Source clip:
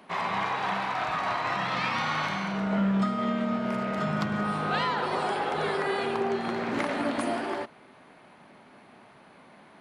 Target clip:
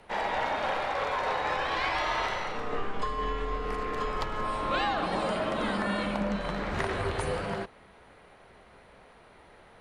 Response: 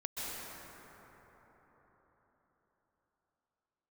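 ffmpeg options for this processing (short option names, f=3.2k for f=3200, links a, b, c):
-af "lowshelf=f=230:g=-8.5,afreqshift=-190"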